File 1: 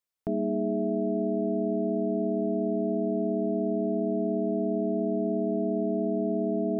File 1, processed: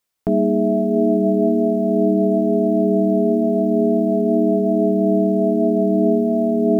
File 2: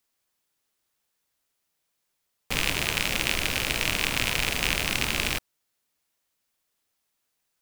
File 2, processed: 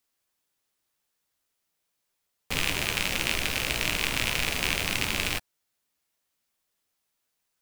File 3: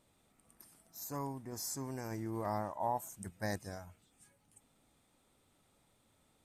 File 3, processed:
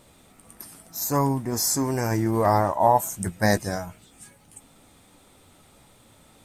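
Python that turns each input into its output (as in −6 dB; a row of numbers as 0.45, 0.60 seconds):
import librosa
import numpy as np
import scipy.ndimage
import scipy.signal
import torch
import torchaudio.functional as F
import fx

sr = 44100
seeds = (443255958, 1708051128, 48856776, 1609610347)

y = fx.quant_float(x, sr, bits=6)
y = fx.chorus_voices(y, sr, voices=2, hz=0.39, base_ms=14, depth_ms=3.9, mix_pct=25)
y = librosa.util.normalize(y) * 10.0 ** (-6 / 20.0)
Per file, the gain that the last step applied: +13.0, +0.5, +19.0 decibels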